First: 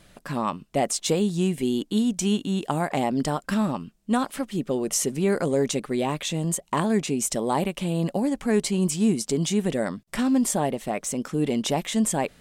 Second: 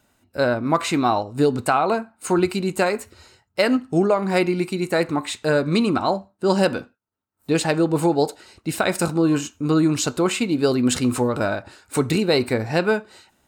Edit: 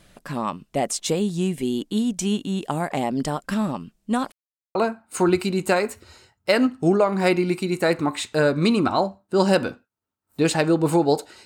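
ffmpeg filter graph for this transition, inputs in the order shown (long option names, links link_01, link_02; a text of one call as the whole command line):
ffmpeg -i cue0.wav -i cue1.wav -filter_complex "[0:a]apad=whole_dur=11.45,atrim=end=11.45,asplit=2[link_01][link_02];[link_01]atrim=end=4.32,asetpts=PTS-STARTPTS,afade=type=out:start_time=4.316:duration=0.004:curve=hsin[link_03];[link_02]atrim=start=4.32:end=4.75,asetpts=PTS-STARTPTS,volume=0[link_04];[1:a]atrim=start=1.85:end=8.55,asetpts=PTS-STARTPTS,afade=type=in:duration=0.004:curve=hsin[link_05];[link_03][link_04][link_05]concat=n=3:v=0:a=1" out.wav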